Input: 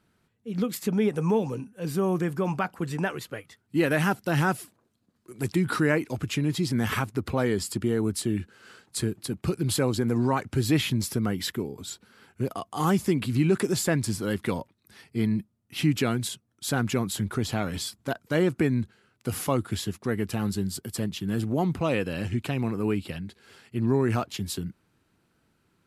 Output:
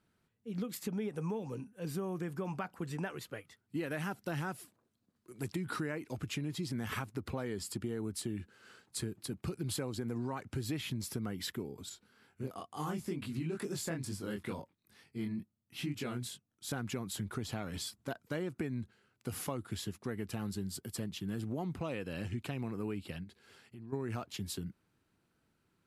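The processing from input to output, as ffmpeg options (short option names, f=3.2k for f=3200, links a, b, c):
-filter_complex "[0:a]asettb=1/sr,asplit=3[a][b][c];[a]atrim=end=11.894[d];[b]atrim=start=11.89:end=16.72,asetpts=PTS-STARTPTS,afade=t=in:d=0.004:c=qsin,afade=t=out:st=4.826:d=0.004:c=qsin,flanger=delay=20:depth=4.8:speed=2.2[e];[c]atrim=start=16.716[f];[d][e]acrossfade=d=0.004:c1=hsin:c2=qsin[g];[g][f]acrossfade=d=0.004:c1=qsin:c2=hsin,asplit=3[h][i][j];[h]afade=t=out:st=23.23:d=0.02[k];[i]acompressor=threshold=-41dB:ratio=4:attack=3.2:release=140:knee=1:detection=peak,afade=t=in:st=23.23:d=0.02,afade=t=out:st=23.92:d=0.02[l];[j]afade=t=in:st=23.92:d=0.02[m];[k][l][m]amix=inputs=3:normalize=0,acompressor=threshold=-26dB:ratio=6,volume=-7.5dB"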